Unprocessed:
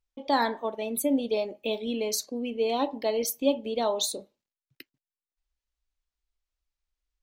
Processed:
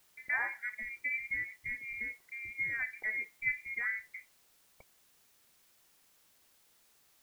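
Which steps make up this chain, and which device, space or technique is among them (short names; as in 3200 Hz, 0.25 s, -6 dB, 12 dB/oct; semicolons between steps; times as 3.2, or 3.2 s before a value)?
scrambled radio voice (BPF 310–2800 Hz; inverted band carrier 2600 Hz; white noise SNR 27 dB); gain -8 dB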